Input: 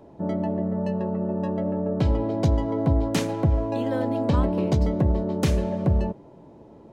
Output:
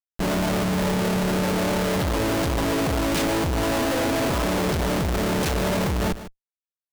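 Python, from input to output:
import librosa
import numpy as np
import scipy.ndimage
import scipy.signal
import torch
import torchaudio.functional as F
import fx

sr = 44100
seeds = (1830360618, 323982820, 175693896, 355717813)

p1 = fx.low_shelf(x, sr, hz=370.0, db=-8.5)
p2 = fx.schmitt(p1, sr, flips_db=-39.0)
p3 = p2 + fx.echo_single(p2, sr, ms=152, db=-13.5, dry=0)
y = F.gain(torch.from_numpy(p3), 6.5).numpy()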